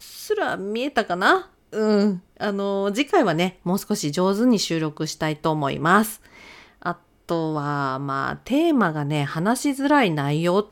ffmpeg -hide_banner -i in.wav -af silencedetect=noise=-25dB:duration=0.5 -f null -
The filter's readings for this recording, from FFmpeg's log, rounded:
silence_start: 6.11
silence_end: 6.86 | silence_duration: 0.74